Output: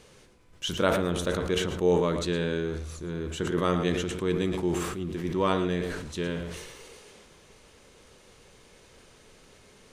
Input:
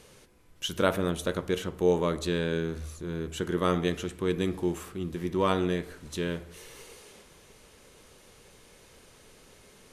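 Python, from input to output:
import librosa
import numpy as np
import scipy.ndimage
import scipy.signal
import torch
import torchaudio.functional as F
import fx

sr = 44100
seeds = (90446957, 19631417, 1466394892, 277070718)

y = fx.peak_eq(x, sr, hz=12000.0, db=-10.5, octaves=0.48)
y = y + 10.0 ** (-12.0 / 20.0) * np.pad(y, (int(112 * sr / 1000.0), 0))[:len(y)]
y = fx.sustainer(y, sr, db_per_s=40.0)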